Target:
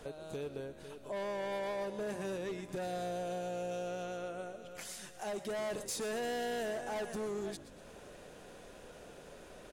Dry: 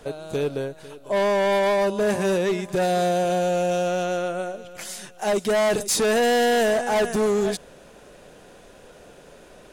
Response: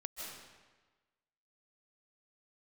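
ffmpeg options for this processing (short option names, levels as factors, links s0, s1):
-filter_complex "[0:a]acompressor=threshold=0.00708:ratio=2,asplit=7[s0][s1][s2][s3][s4][s5][s6];[s1]adelay=120,afreqshift=-61,volume=0.158[s7];[s2]adelay=240,afreqshift=-122,volume=0.0933[s8];[s3]adelay=360,afreqshift=-183,volume=0.055[s9];[s4]adelay=480,afreqshift=-244,volume=0.0327[s10];[s5]adelay=600,afreqshift=-305,volume=0.0193[s11];[s6]adelay=720,afreqshift=-366,volume=0.0114[s12];[s0][s7][s8][s9][s10][s11][s12]amix=inputs=7:normalize=0[s13];[1:a]atrim=start_sample=2205,afade=t=out:st=0.18:d=0.01,atrim=end_sample=8379[s14];[s13][s14]afir=irnorm=-1:irlink=0"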